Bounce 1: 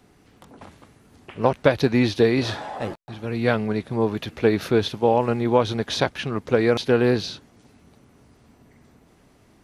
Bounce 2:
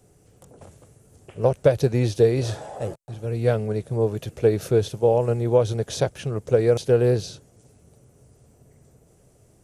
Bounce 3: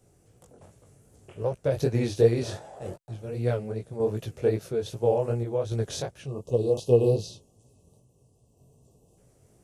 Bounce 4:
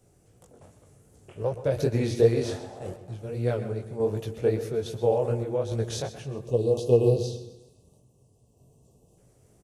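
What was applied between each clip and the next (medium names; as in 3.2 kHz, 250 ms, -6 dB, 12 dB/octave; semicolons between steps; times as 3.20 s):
graphic EQ 125/250/500/1000/2000/4000/8000 Hz +6/-10/+6/-9/-8/-9/+9 dB
random-step tremolo; chorus 2.6 Hz, delay 16.5 ms, depth 6.1 ms; spectral selection erased 6.27–9.18 s, 1.2–2.5 kHz
feedback delay 131 ms, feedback 45%, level -15 dB; on a send at -12 dB: reverberation RT60 0.70 s, pre-delay 117 ms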